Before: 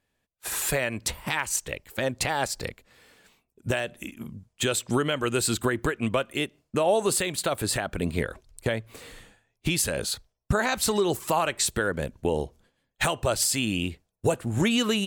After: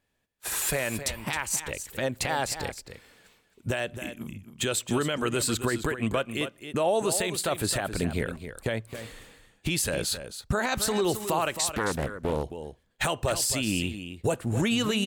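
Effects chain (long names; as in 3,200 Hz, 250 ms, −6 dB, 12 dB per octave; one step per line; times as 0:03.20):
brickwall limiter −16.5 dBFS, peak gain reduction 3.5 dB
on a send: single-tap delay 267 ms −10.5 dB
0:11.73–0:12.44: on the sum: highs frequency-modulated by the lows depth 0.77 ms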